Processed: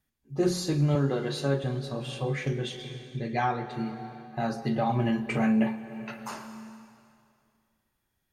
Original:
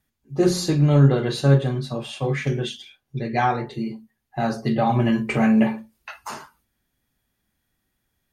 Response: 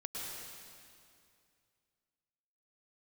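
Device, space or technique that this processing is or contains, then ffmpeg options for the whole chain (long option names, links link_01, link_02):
ducked reverb: -filter_complex "[0:a]asettb=1/sr,asplit=3[link_01][link_02][link_03];[link_01]atrim=end=0.954[link_04];[link_02]atrim=start=0.95:end=1.64,asetpts=PTS-STARTPTS,afade=type=in:duration=0.004:curve=qsin,afade=type=out:start_time=0.686:duration=0.004:curve=qsin,highpass=210[link_05];[link_03]atrim=start=1.636[link_06];[link_04][link_05]acrossfade=duration=0.004:curve1=hsin:curve2=qsin[link_07];[link_07][link_06]acrossfade=duration=0.004:curve1=qsin:curve2=hsin,asplit=3[link_08][link_09][link_10];[1:a]atrim=start_sample=2205[link_11];[link_09][link_11]afir=irnorm=-1:irlink=0[link_12];[link_10]apad=whole_len=367105[link_13];[link_12][link_13]sidechaincompress=threshold=-25dB:ratio=8:attack=16:release=515,volume=-5dB[link_14];[link_08][link_14]amix=inputs=2:normalize=0,volume=-7.5dB"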